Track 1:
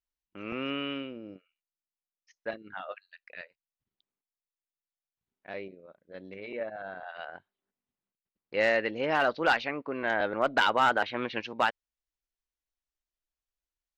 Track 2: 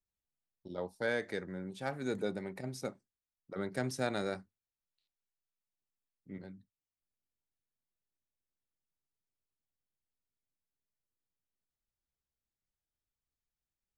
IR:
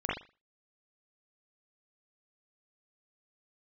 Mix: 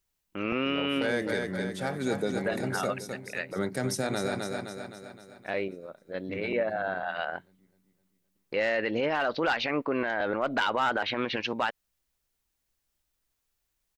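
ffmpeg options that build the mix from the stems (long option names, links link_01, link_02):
-filter_complex "[0:a]volume=2dB[link_01];[1:a]highshelf=frequency=7300:gain=7,volume=0dB,asplit=2[link_02][link_03];[link_03]volume=-6.5dB,aecho=0:1:258|516|774|1032|1290|1548|1806|2064:1|0.53|0.281|0.149|0.0789|0.0418|0.0222|0.0117[link_04];[link_01][link_02][link_04]amix=inputs=3:normalize=0,acontrast=87,alimiter=limit=-18.5dB:level=0:latency=1:release=70"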